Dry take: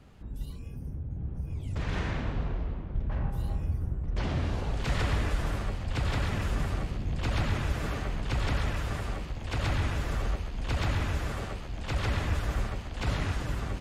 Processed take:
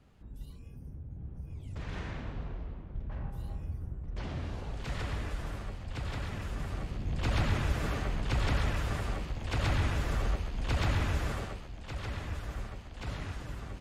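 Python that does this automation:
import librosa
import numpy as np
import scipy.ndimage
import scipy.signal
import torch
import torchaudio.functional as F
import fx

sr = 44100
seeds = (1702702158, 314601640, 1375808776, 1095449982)

y = fx.gain(x, sr, db=fx.line((6.55, -7.5), (7.29, -0.5), (11.32, -0.5), (11.8, -8.5)))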